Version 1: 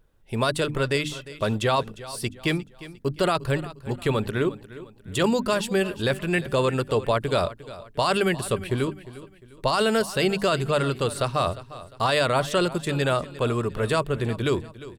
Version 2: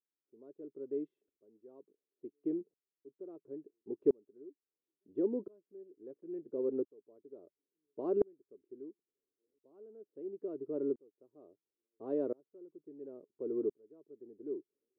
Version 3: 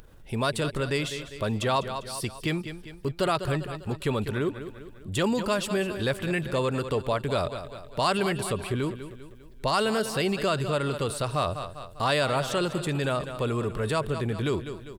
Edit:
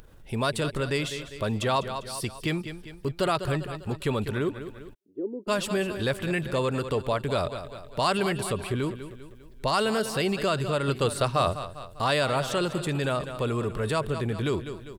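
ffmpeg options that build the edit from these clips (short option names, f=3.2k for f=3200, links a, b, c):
-filter_complex "[2:a]asplit=3[a][b][c];[a]atrim=end=4.95[d];[1:a]atrim=start=4.93:end=5.49[e];[b]atrim=start=5.47:end=10.882[f];[0:a]atrim=start=10.878:end=11.552[g];[c]atrim=start=11.548[h];[d][e]acrossfade=d=0.02:c1=tri:c2=tri[i];[i][f]acrossfade=d=0.02:c1=tri:c2=tri[j];[j][g]acrossfade=d=0.004:c1=hsin:c2=hsin[k];[k][h]acrossfade=d=0.004:c1=hsin:c2=hsin"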